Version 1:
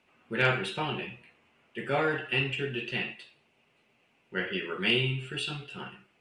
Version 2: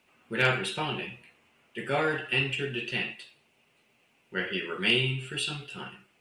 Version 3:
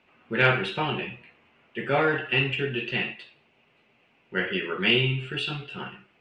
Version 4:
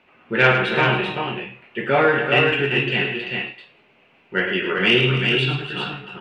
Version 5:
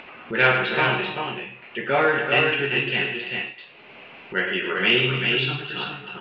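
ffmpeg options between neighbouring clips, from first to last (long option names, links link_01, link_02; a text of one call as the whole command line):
ffmpeg -i in.wav -af "crystalizer=i=1.5:c=0" out.wav
ffmpeg -i in.wav -af "lowpass=3100,volume=4.5dB" out.wav
ffmpeg -i in.wav -af "acontrast=61,bass=frequency=250:gain=-3,treble=frequency=4000:gain=-6,aecho=1:1:107|274|388|418:0.376|0.224|0.562|0.237" out.wav
ffmpeg -i in.wav -af "lowpass=frequency=4500:width=0.5412,lowpass=frequency=4500:width=1.3066,lowshelf=frequency=390:gain=-5.5,acompressor=mode=upward:threshold=-28dB:ratio=2.5,volume=-1.5dB" out.wav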